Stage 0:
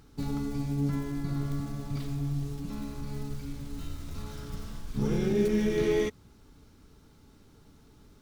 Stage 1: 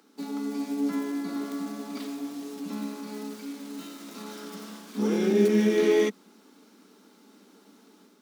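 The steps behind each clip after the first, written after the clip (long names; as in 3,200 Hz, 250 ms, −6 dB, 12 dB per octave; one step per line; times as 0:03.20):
Butterworth high-pass 190 Hz 96 dB per octave
automatic gain control gain up to 5 dB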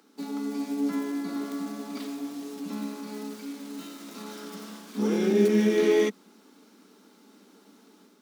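no processing that can be heard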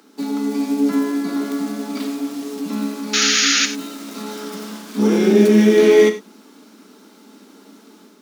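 sound drawn into the spectrogram noise, 0:03.13–0:03.66, 1,200–7,000 Hz −26 dBFS
reverb whose tail is shaped and stops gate 120 ms flat, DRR 8 dB
level +9 dB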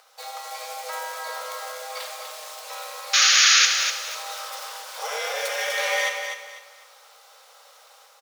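frequency shifter −62 Hz
linear-phase brick-wall high-pass 450 Hz
repeating echo 248 ms, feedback 29%, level −7 dB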